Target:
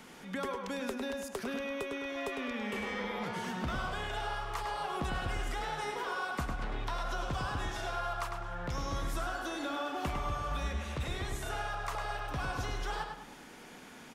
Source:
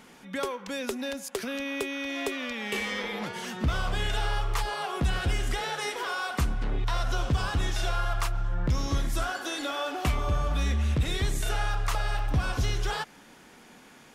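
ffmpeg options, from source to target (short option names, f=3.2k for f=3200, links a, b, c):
-filter_complex "[0:a]acrossover=split=300|660|1400[a][b][c][d];[a]acompressor=threshold=-38dB:ratio=4[e];[b]acompressor=threshold=-49dB:ratio=4[f];[c]acompressor=threshold=-39dB:ratio=4[g];[d]acompressor=threshold=-47dB:ratio=4[h];[e][f][g][h]amix=inputs=4:normalize=0,asplit=2[i][j];[j]adelay=103,lowpass=f=4.9k:p=1,volume=-4.5dB,asplit=2[k][l];[l]adelay=103,lowpass=f=4.9k:p=1,volume=0.4,asplit=2[m][n];[n]adelay=103,lowpass=f=4.9k:p=1,volume=0.4,asplit=2[o][p];[p]adelay=103,lowpass=f=4.9k:p=1,volume=0.4,asplit=2[q][r];[r]adelay=103,lowpass=f=4.9k:p=1,volume=0.4[s];[k][m][o][q][s]amix=inputs=5:normalize=0[t];[i][t]amix=inputs=2:normalize=0"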